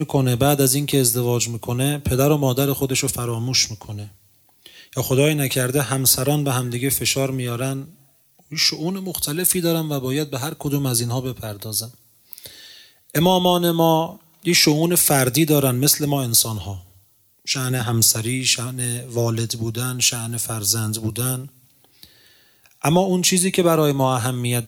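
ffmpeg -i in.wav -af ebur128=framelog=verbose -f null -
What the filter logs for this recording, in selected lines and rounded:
Integrated loudness:
  I:         -19.3 LUFS
  Threshold: -30.1 LUFS
Loudness range:
  LRA:         5.3 LU
  Threshold: -40.3 LUFS
  LRA low:   -22.7 LUFS
  LRA high:  -17.4 LUFS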